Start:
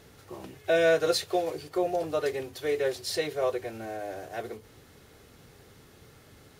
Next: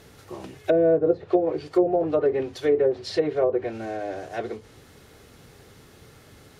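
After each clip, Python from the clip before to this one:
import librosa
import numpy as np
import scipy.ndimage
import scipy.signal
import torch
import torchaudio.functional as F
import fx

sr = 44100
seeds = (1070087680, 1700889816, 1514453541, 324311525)

y = fx.env_lowpass_down(x, sr, base_hz=530.0, full_db=-22.0)
y = fx.dynamic_eq(y, sr, hz=280.0, q=0.93, threshold_db=-41.0, ratio=4.0, max_db=7)
y = F.gain(torch.from_numpy(y), 4.0).numpy()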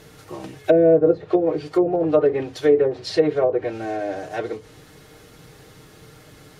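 y = x + 0.46 * np.pad(x, (int(6.5 * sr / 1000.0), 0))[:len(x)]
y = F.gain(torch.from_numpy(y), 3.0).numpy()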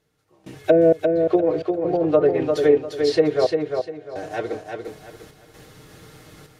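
y = fx.step_gate(x, sr, bpm=65, pattern='..xx.xx.xxxx.xx.', floor_db=-24.0, edge_ms=4.5)
y = fx.echo_feedback(y, sr, ms=349, feedback_pct=28, wet_db=-5.0)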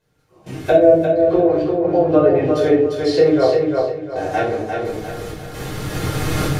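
y = fx.recorder_agc(x, sr, target_db=-12.5, rise_db_per_s=9.8, max_gain_db=30)
y = fx.room_shoebox(y, sr, seeds[0], volume_m3=470.0, walls='furnished', distance_m=5.1)
y = F.gain(torch.from_numpy(y), -4.5).numpy()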